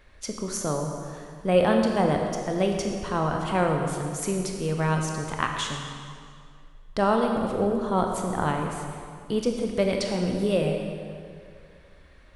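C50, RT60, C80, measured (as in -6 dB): 3.0 dB, 2.2 s, 4.5 dB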